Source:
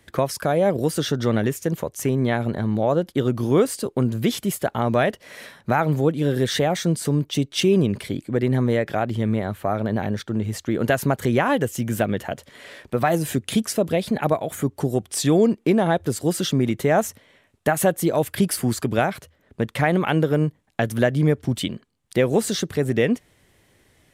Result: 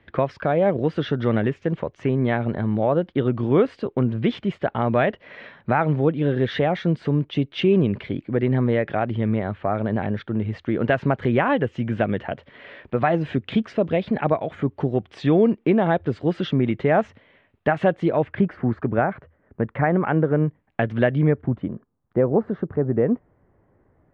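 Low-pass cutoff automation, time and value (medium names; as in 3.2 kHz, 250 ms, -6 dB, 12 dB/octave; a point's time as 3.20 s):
low-pass 24 dB/octave
18.01 s 3 kHz
18.57 s 1.8 kHz
20.22 s 1.8 kHz
21.10 s 3.2 kHz
21.61 s 1.3 kHz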